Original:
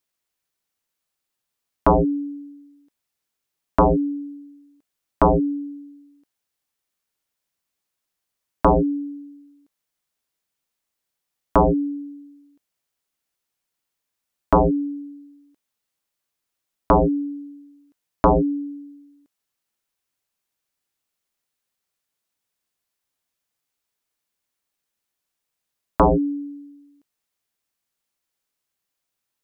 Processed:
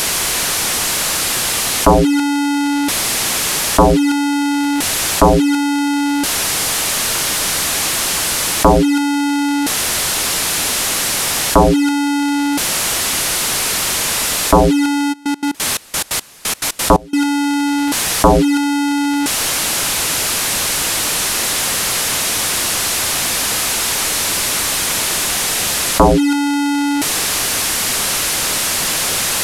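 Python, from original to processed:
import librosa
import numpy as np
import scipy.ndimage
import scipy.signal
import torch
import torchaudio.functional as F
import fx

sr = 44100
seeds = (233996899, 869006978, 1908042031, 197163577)

p1 = fx.delta_mod(x, sr, bps=64000, step_db=-23.5)
p2 = fx.over_compress(p1, sr, threshold_db=-27.0, ratio=-1.0)
p3 = p1 + (p2 * 10.0 ** (1.5 / 20.0))
p4 = fx.step_gate(p3, sr, bpm=176, pattern='.xx..x.x...x.x', floor_db=-24.0, edge_ms=4.5, at=(15.12, 17.17), fade=0.02)
y = p4 * 10.0 ** (5.0 / 20.0)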